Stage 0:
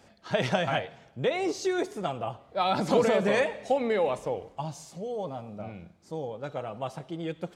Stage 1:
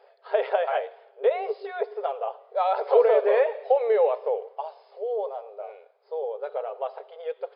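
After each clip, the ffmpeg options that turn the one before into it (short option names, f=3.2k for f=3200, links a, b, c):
-filter_complex "[0:a]acrossover=split=3500[a][b];[b]acompressor=threshold=-52dB:ratio=4:attack=1:release=60[c];[a][c]amix=inputs=2:normalize=0,afftfilt=real='re*between(b*sr/4096,390,5200)':imag='im*between(b*sr/4096,390,5200)':win_size=4096:overlap=0.75,tiltshelf=f=1.2k:g=8.5"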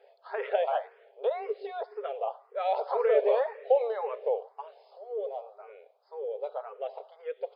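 -filter_complex "[0:a]asplit=2[a][b];[b]afreqshift=1.9[c];[a][c]amix=inputs=2:normalize=1,volume=-1.5dB"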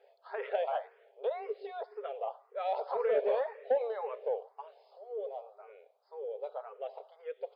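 -af "asoftclip=type=tanh:threshold=-13.5dB,volume=-4.5dB"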